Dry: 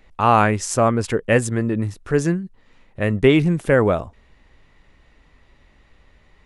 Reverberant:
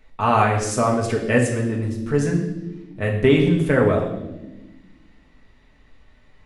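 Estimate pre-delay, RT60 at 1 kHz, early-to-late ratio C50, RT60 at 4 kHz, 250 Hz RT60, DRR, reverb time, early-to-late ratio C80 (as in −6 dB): 4 ms, 0.75 s, 6.5 dB, 1.2 s, 2.1 s, −1.0 dB, 1.1 s, 9.0 dB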